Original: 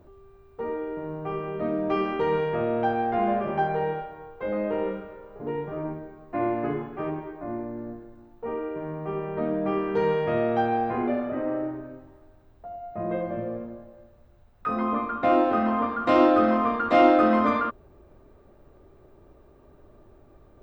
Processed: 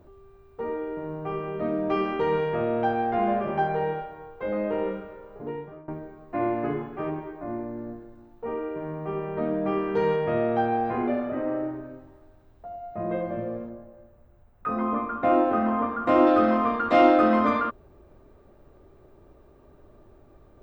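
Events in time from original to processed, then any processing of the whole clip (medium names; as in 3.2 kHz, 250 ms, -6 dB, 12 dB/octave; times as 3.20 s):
5.34–5.88 s: fade out linear, to -23 dB
10.16–10.85 s: treble shelf 3.4 kHz -7 dB
13.69–16.27 s: peaking EQ 4.4 kHz -10 dB 1.4 oct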